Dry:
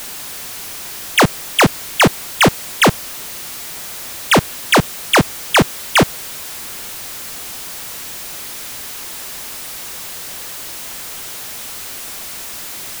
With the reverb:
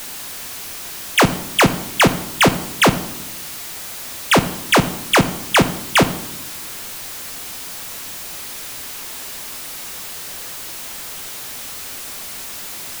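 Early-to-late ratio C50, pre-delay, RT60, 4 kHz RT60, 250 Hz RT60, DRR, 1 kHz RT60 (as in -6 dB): 14.0 dB, 7 ms, 0.80 s, 0.65 s, 1.2 s, 9.0 dB, 0.75 s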